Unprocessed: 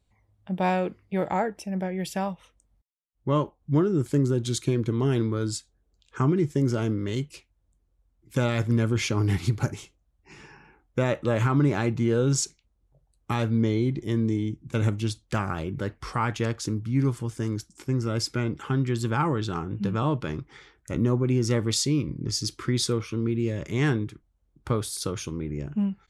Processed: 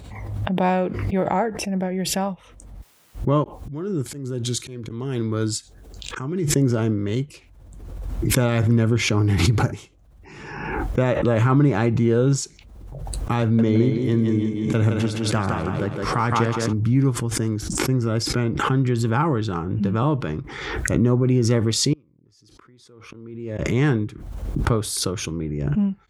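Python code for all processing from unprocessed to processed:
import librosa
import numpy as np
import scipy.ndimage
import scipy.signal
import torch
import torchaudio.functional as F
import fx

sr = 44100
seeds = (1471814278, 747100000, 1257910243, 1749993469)

y = fx.chain(x, sr, fx.auto_swell(attack_ms=550.0),
    fx.high_shelf(hz=2400.0, db=8.0), at=(3.44, 6.52))
y = fx.chain(y, sr, fx.highpass(hz=56.0, slope=12),
    fx.echo_thinned(ms=165, feedback_pct=44, hz=170.0, wet_db=-3.5), at=(13.42, 16.73))
y = fx.chain(y, sr, fx.peak_eq(hz=830.0, db=7.5, octaves=2.5),
    fx.gate_flip(shuts_db=-23.0, range_db=-35), at=(21.93, 23.59))
y = scipy.signal.sosfilt(scipy.signal.butter(2, 42.0, 'highpass', fs=sr, output='sos'), y)
y = fx.high_shelf(y, sr, hz=2200.0, db=-6.5)
y = fx.pre_swell(y, sr, db_per_s=38.0)
y = y * librosa.db_to_amplitude(4.5)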